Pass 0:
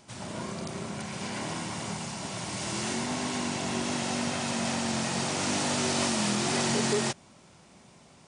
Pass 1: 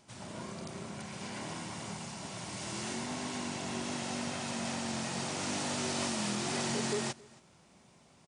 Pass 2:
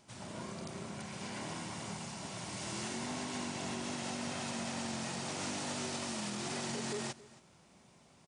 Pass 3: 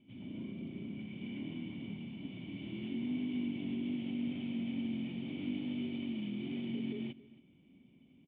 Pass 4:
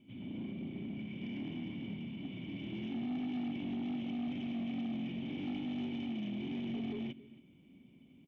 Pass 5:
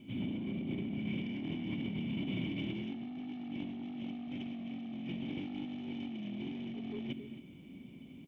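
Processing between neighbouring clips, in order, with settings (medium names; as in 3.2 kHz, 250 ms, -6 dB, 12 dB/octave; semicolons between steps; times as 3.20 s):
delay 273 ms -23.5 dB; trim -6.5 dB
peak limiter -28.5 dBFS, peak gain reduction 7.5 dB; trim -1 dB
cascade formant filter i; trim +9.5 dB
saturation -35.5 dBFS, distortion -14 dB; trim +2.5 dB
compressor with a negative ratio -44 dBFS, ratio -1; trim +4.5 dB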